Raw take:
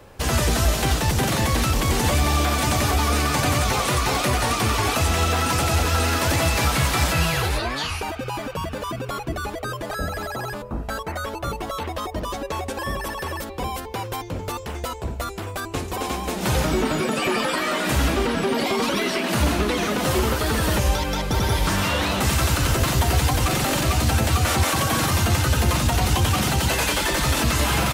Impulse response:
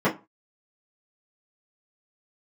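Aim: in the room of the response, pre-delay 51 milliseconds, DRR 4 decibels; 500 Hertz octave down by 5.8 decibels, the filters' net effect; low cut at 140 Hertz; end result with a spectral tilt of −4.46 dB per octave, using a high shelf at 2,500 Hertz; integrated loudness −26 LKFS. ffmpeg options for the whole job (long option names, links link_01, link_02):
-filter_complex "[0:a]highpass=140,equalizer=frequency=500:width_type=o:gain=-7.5,highshelf=frequency=2500:gain=-4.5,asplit=2[link_01][link_02];[1:a]atrim=start_sample=2205,adelay=51[link_03];[link_02][link_03]afir=irnorm=-1:irlink=0,volume=-20dB[link_04];[link_01][link_04]amix=inputs=2:normalize=0,volume=-2dB"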